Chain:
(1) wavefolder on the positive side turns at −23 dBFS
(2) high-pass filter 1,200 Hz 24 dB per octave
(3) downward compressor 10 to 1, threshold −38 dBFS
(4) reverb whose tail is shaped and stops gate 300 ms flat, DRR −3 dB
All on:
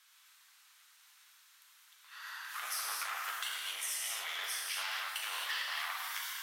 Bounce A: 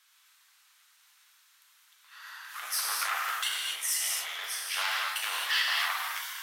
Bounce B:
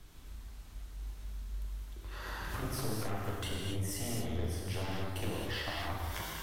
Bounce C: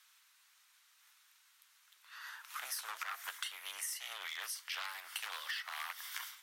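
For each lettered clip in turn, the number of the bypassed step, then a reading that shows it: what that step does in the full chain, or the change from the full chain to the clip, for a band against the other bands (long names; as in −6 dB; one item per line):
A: 3, average gain reduction 4.0 dB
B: 2, 500 Hz band +21.5 dB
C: 4, change in momentary loudness spread −1 LU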